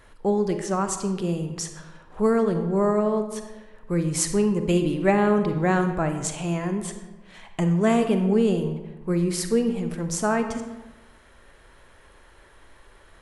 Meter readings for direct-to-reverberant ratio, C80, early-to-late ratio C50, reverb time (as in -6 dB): 7.0 dB, 10.0 dB, 8.0 dB, 1.1 s